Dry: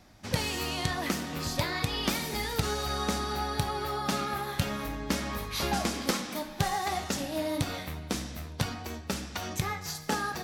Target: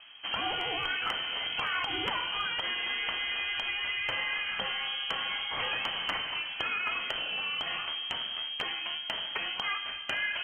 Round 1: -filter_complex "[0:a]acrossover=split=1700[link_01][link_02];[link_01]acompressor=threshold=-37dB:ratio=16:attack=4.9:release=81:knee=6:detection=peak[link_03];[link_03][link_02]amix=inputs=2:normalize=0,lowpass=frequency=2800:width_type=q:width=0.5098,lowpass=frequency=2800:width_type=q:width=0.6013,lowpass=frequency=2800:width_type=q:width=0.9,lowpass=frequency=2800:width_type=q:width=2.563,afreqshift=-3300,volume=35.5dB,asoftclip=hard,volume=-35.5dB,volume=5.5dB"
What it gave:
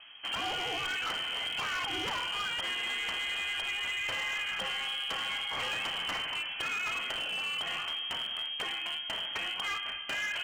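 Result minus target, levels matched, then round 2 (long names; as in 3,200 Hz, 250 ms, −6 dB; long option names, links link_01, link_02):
gain into a clipping stage and back: distortion +17 dB
-filter_complex "[0:a]acrossover=split=1700[link_01][link_02];[link_01]acompressor=threshold=-37dB:ratio=16:attack=4.9:release=81:knee=6:detection=peak[link_03];[link_03][link_02]amix=inputs=2:normalize=0,lowpass=frequency=2800:width_type=q:width=0.5098,lowpass=frequency=2800:width_type=q:width=0.6013,lowpass=frequency=2800:width_type=q:width=0.9,lowpass=frequency=2800:width_type=q:width=2.563,afreqshift=-3300,volume=27dB,asoftclip=hard,volume=-27dB,volume=5.5dB"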